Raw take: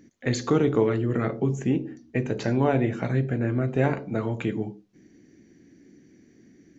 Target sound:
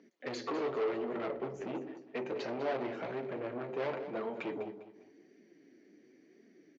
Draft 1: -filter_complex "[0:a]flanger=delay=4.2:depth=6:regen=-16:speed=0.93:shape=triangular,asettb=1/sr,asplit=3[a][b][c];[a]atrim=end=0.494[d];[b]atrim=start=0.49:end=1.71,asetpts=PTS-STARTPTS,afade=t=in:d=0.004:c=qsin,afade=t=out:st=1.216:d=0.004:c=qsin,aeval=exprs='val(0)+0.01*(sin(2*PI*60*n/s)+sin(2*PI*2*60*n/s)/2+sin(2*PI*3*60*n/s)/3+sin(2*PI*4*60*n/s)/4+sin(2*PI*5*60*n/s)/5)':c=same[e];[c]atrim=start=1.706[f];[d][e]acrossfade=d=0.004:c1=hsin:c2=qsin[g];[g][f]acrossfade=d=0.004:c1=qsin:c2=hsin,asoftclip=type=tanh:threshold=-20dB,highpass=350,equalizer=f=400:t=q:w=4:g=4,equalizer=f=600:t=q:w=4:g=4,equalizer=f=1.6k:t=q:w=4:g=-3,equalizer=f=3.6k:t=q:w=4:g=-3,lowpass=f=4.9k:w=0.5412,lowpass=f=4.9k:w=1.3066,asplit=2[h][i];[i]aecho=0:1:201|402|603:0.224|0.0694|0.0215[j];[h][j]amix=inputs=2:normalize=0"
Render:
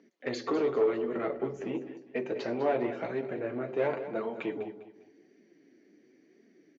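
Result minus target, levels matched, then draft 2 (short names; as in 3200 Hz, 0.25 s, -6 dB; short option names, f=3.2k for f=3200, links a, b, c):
soft clip: distortion -10 dB
-filter_complex "[0:a]flanger=delay=4.2:depth=6:regen=-16:speed=0.93:shape=triangular,asettb=1/sr,asplit=3[a][b][c];[a]atrim=end=0.494[d];[b]atrim=start=0.49:end=1.71,asetpts=PTS-STARTPTS,afade=t=in:d=0.004:c=qsin,afade=t=out:st=1.216:d=0.004:c=qsin,aeval=exprs='val(0)+0.01*(sin(2*PI*60*n/s)+sin(2*PI*2*60*n/s)/2+sin(2*PI*3*60*n/s)/3+sin(2*PI*4*60*n/s)/4+sin(2*PI*5*60*n/s)/5)':c=same[e];[c]atrim=start=1.706[f];[d][e]acrossfade=d=0.004:c1=hsin:c2=qsin[g];[g][f]acrossfade=d=0.004:c1=qsin:c2=hsin,asoftclip=type=tanh:threshold=-31dB,highpass=350,equalizer=f=400:t=q:w=4:g=4,equalizer=f=600:t=q:w=4:g=4,equalizer=f=1.6k:t=q:w=4:g=-3,equalizer=f=3.6k:t=q:w=4:g=-3,lowpass=f=4.9k:w=0.5412,lowpass=f=4.9k:w=1.3066,asplit=2[h][i];[i]aecho=0:1:201|402|603:0.224|0.0694|0.0215[j];[h][j]amix=inputs=2:normalize=0"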